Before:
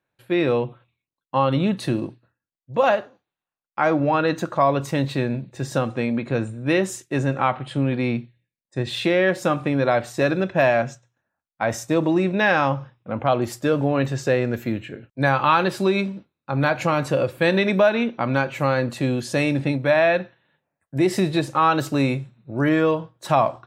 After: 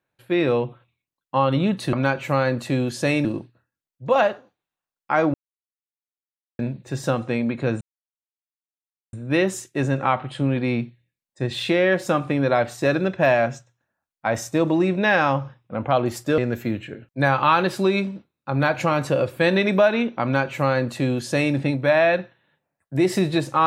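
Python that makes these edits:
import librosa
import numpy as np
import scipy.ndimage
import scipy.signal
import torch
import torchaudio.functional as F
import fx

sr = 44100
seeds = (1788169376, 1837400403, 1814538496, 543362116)

y = fx.edit(x, sr, fx.silence(start_s=4.02, length_s=1.25),
    fx.insert_silence(at_s=6.49, length_s=1.32),
    fx.cut(start_s=13.74, length_s=0.65),
    fx.duplicate(start_s=18.24, length_s=1.32, to_s=1.93), tone=tone)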